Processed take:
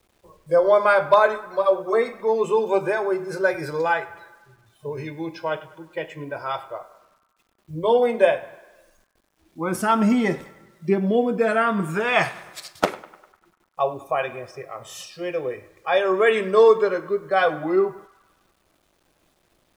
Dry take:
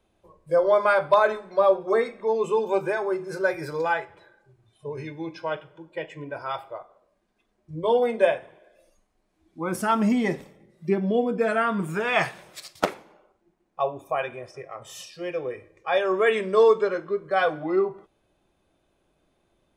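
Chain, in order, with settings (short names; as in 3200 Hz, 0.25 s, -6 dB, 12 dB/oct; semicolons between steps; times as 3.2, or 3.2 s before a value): 1.26–2.06 notch comb 200 Hz; bit-crush 11-bit; on a send: narrowing echo 0.1 s, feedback 63%, band-pass 1300 Hz, level -17 dB; on the sum: gain +3 dB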